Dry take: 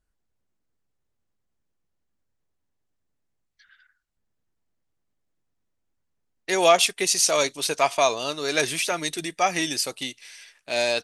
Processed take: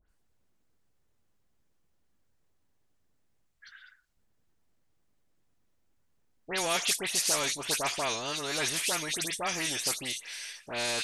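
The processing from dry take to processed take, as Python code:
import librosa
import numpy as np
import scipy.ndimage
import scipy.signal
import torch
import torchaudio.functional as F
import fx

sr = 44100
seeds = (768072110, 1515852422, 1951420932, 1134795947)

y = fx.high_shelf(x, sr, hz=7700.0, db=-11.0, at=(7.88, 8.28))
y = fx.dispersion(y, sr, late='highs', ms=91.0, hz=2500.0)
y = fx.spectral_comp(y, sr, ratio=2.0)
y = F.gain(torch.from_numpy(y), -9.0).numpy()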